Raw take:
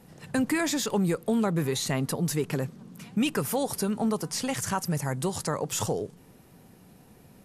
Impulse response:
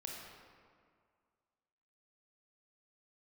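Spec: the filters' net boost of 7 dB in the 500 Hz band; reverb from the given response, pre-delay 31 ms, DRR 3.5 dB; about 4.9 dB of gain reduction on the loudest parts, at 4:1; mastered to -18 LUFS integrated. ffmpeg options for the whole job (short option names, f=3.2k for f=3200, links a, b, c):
-filter_complex "[0:a]equalizer=f=500:t=o:g=8.5,acompressor=threshold=-23dB:ratio=4,asplit=2[a][b];[1:a]atrim=start_sample=2205,adelay=31[c];[b][c]afir=irnorm=-1:irlink=0,volume=-2dB[d];[a][d]amix=inputs=2:normalize=0,volume=9dB"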